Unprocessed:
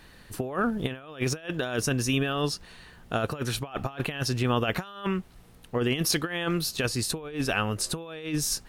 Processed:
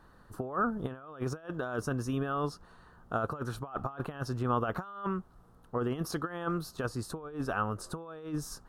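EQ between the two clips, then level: resonant high shelf 1.7 kHz -9.5 dB, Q 3; -6.0 dB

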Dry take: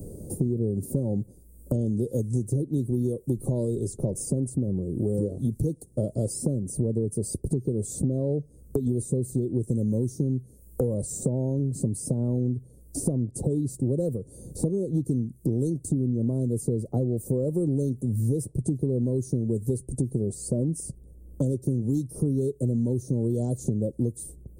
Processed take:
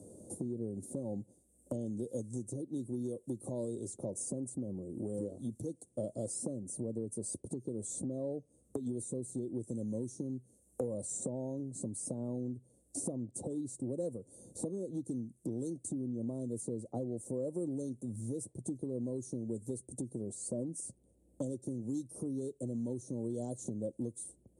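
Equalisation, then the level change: cabinet simulation 120–9500 Hz, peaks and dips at 150 Hz -9 dB, 420 Hz -7 dB, 1.4 kHz -4 dB, 4.9 kHz -9 dB; bass shelf 300 Hz -9.5 dB; -3.5 dB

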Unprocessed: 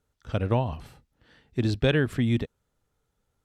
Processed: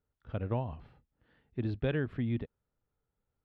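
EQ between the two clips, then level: distance through air 370 m; -8.0 dB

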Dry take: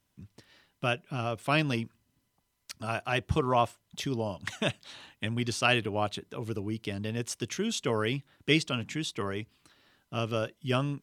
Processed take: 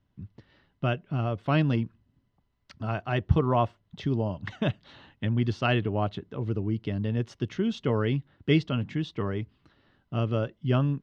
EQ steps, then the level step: distance through air 250 m; bass shelf 280 Hz +9 dB; band-stop 2.4 kHz, Q 11; 0.0 dB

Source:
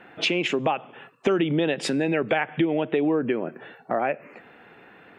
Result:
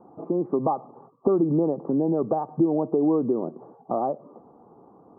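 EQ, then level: rippled Chebyshev low-pass 1.2 kHz, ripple 3 dB; distance through air 340 m; +2.5 dB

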